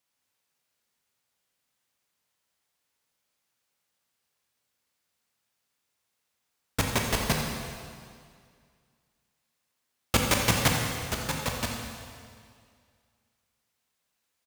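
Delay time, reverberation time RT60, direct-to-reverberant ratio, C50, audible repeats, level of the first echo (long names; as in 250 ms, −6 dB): 86 ms, 2.1 s, 0.0 dB, 1.5 dB, 1, −11.0 dB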